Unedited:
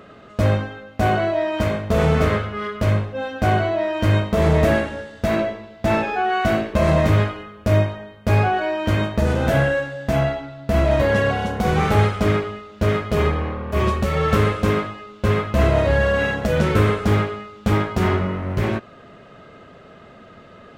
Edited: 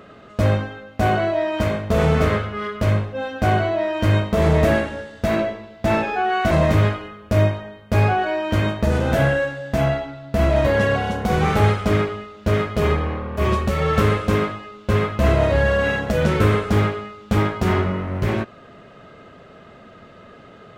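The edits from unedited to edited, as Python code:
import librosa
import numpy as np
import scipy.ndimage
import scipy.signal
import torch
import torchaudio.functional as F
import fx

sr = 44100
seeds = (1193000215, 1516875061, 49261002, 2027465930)

y = fx.edit(x, sr, fx.cut(start_s=6.51, length_s=0.35), tone=tone)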